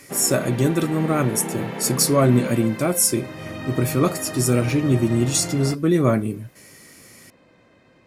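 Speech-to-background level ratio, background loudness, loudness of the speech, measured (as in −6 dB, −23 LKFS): 10.5 dB, −31.0 LKFS, −20.5 LKFS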